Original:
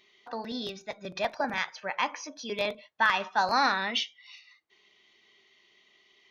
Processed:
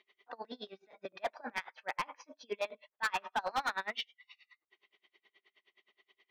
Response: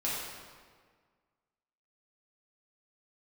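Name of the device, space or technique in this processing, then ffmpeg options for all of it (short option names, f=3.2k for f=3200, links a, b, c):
helicopter radio: -af "highpass=340,lowpass=2.8k,aeval=exprs='val(0)*pow(10,-31*(0.5-0.5*cos(2*PI*9.5*n/s))/20)':c=same,asoftclip=type=hard:threshold=-28dB,volume=1dB"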